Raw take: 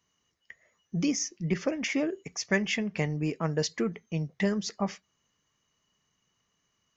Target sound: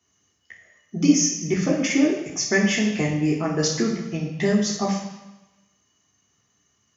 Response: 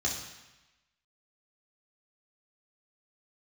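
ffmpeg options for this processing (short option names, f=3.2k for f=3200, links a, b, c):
-filter_complex "[0:a]highpass=80[a];[1:a]atrim=start_sample=2205[b];[a][b]afir=irnorm=-1:irlink=0"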